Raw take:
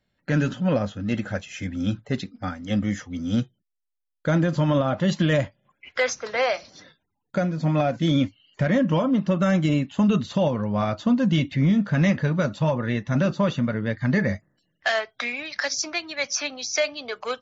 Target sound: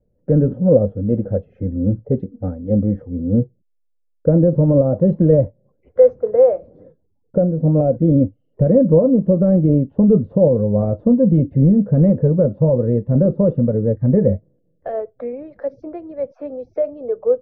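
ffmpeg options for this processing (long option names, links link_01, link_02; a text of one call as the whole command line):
ffmpeg -i in.wav -af "lowpass=frequency=490:width_type=q:width=6.1,aemphasis=mode=reproduction:type=bsi,volume=-1dB" out.wav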